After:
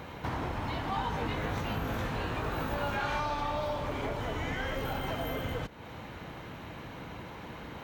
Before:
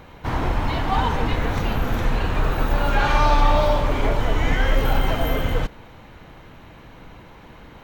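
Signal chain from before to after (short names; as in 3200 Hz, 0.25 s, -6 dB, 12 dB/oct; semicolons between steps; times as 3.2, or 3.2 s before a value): HPF 72 Hz 12 dB/oct; compressor 3:1, threshold -37 dBFS, peak gain reduction 15.5 dB; 0.9–3.2 doubler 19 ms -4 dB; gain +1.5 dB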